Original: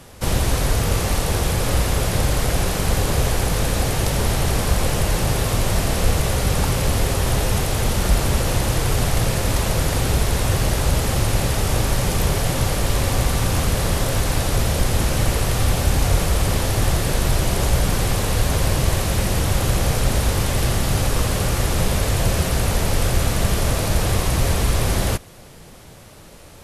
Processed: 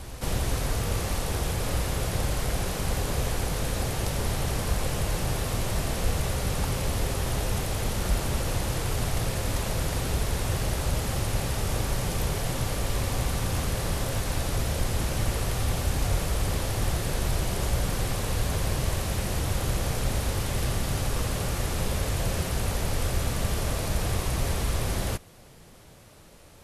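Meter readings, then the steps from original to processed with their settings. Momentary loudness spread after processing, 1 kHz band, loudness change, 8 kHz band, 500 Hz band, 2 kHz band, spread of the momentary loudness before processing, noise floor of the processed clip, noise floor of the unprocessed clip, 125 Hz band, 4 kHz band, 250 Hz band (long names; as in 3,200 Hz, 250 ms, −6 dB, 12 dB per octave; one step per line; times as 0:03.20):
1 LU, −8.0 dB, −8.0 dB, −8.0 dB, −8.5 dB, −8.0 dB, 1 LU, −50 dBFS, −42 dBFS, −8.0 dB, −8.0 dB, −8.5 dB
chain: backwards echo 396 ms −12 dB
level −8.5 dB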